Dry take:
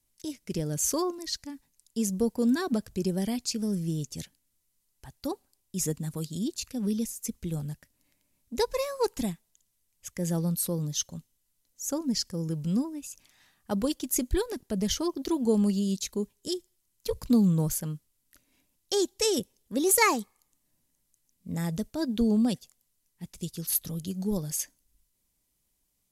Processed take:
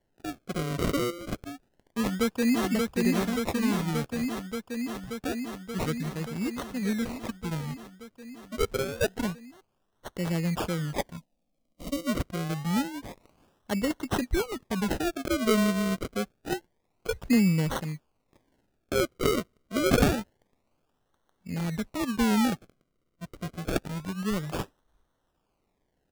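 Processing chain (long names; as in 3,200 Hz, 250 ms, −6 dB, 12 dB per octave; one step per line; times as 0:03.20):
sample-and-hold swept by an LFO 35×, swing 100% 0.27 Hz
0:01.48–0:02.64: delay throw 580 ms, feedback 80%, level −2.5 dB
0:11.17–0:12.07: phaser with its sweep stopped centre 400 Hz, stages 6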